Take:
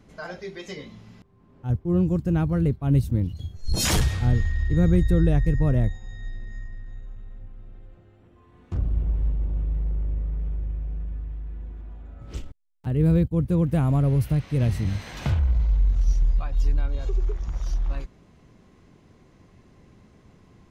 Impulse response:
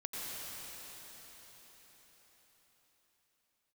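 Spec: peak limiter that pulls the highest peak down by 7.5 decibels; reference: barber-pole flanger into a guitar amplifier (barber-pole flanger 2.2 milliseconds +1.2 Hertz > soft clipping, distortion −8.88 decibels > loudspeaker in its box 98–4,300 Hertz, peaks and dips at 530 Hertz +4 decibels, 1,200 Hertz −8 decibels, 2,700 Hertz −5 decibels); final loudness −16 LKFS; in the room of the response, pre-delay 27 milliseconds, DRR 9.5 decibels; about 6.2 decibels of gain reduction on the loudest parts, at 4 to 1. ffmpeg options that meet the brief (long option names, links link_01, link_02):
-filter_complex "[0:a]acompressor=threshold=-23dB:ratio=4,alimiter=limit=-22.5dB:level=0:latency=1,asplit=2[link_01][link_02];[1:a]atrim=start_sample=2205,adelay=27[link_03];[link_02][link_03]afir=irnorm=-1:irlink=0,volume=-12dB[link_04];[link_01][link_04]amix=inputs=2:normalize=0,asplit=2[link_05][link_06];[link_06]adelay=2.2,afreqshift=1.2[link_07];[link_05][link_07]amix=inputs=2:normalize=1,asoftclip=threshold=-34dB,highpass=98,equalizer=frequency=530:width_type=q:width=4:gain=4,equalizer=frequency=1200:width_type=q:width=4:gain=-8,equalizer=frequency=2700:width_type=q:width=4:gain=-5,lowpass=frequency=4300:width=0.5412,lowpass=frequency=4300:width=1.3066,volume=27.5dB"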